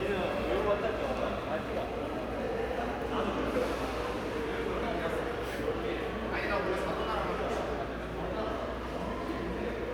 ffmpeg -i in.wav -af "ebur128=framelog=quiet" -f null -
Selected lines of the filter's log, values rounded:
Integrated loudness:
  I:         -33.5 LUFS
  Threshold: -43.5 LUFS
Loudness range:
  LRA:         0.8 LU
  Threshold: -53.4 LUFS
  LRA low:   -33.8 LUFS
  LRA high:  -33.0 LUFS